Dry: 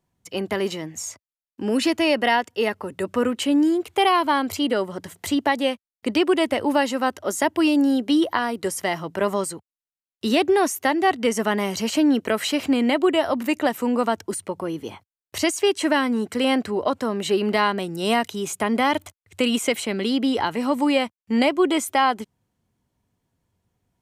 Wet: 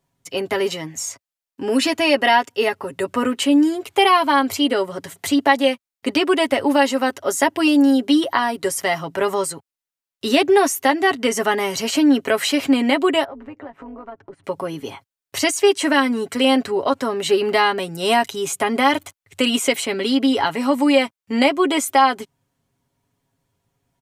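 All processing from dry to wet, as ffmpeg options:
-filter_complex "[0:a]asettb=1/sr,asplit=3[a][b][c];[a]atrim=end=13.244[d];[b]atrim=start=13.24:end=14.44,asetpts=PTS-STARTPTS,afade=t=in:d=0.004:c=qsin,afade=t=out:st=1.196:d=0.004:c=qsin,lowpass=1.4k,tremolo=f=200:d=0.621,acompressor=threshold=-39dB:ratio=3:attack=3.2:release=140:knee=1:detection=peak[e];[c]atrim=start=14.436[f];[d][e]acrossfade=d=0.004:c1=hsin:c2=qsin[g];[g][f]acrossfade=d=0.004:c1=qsin:c2=hsin,lowshelf=f=350:g=-4.5,aecho=1:1:7.3:0.59,volume=3.5dB"

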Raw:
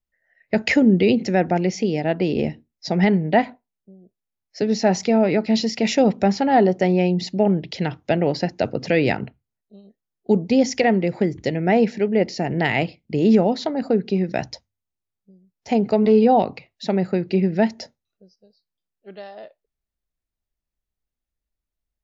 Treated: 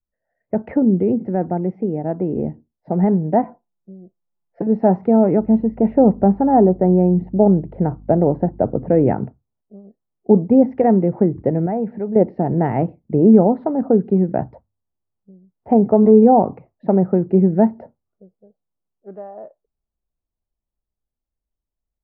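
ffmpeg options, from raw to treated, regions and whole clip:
-filter_complex "[0:a]asettb=1/sr,asplit=3[a][b][c];[a]atrim=end=3.434[d];[b]atrim=start=3.43:end=4.67,asetpts=PTS-STARTPTS,afade=t=in:d=0.004:c=qsin,afade=t=out:st=1.236:d=0.004:c=qsin,acompressor=threshold=-22dB:ratio=6:attack=3.2:release=140:knee=1:detection=peak,aecho=1:1:5.8:0.83,atrim=end_sample=54684[e];[c]atrim=start=4.666[f];[d][e]acrossfade=d=0.004:c1=hsin:c2=qsin[g];[g][f]acrossfade=d=0.004:c1=qsin:c2=hsin,asettb=1/sr,asplit=3[h][i][j];[h]atrim=end=5.404[k];[i]atrim=start=5.4:end=9.07,asetpts=PTS-STARTPTS,afade=t=in:d=0.004:c=qsin,afade=t=out:st=3.666:d=0.004:c=qsin,lowpass=f=1.3k:p=1,aeval=exprs='val(0)+0.00562*(sin(2*PI*50*n/s)+sin(2*PI*2*50*n/s)/2+sin(2*PI*3*50*n/s)/3+sin(2*PI*4*50*n/s)/4+sin(2*PI*5*50*n/s)/5)':c=same[l];[j]atrim=start=9.066[m];[k][l]acrossfade=d=0.004:c1=hsin:c2=qsin[n];[n][m]acrossfade=d=0.004:c1=qsin:c2=hsin,asettb=1/sr,asplit=3[o][p][q];[o]atrim=end=11.664[r];[p]atrim=start=11.66:end=12.16,asetpts=PTS-STARTPTS,afade=t=in:d=0.004:c=qsin,afade=t=out:st=0.496:d=0.004:c=qsin,equalizer=f=340:w=1.1:g=-5.5,acompressor=threshold=-33dB:ratio=1.5:attack=3.2:release=140:knee=1:detection=peak[s];[q]atrim=start=12.156[t];[r][s]acrossfade=d=0.004:c1=hsin:c2=qsin[u];[u][t]acrossfade=d=0.004:c1=qsin:c2=hsin,lowpass=f=1.1k:w=0.5412,lowpass=f=1.1k:w=1.3066,adynamicequalizer=threshold=0.0282:dfrequency=620:dqfactor=1.2:tfrequency=620:tqfactor=1.2:attack=5:release=100:ratio=0.375:range=2:mode=cutabove:tftype=bell,dynaudnorm=f=730:g=11:m=11.5dB"

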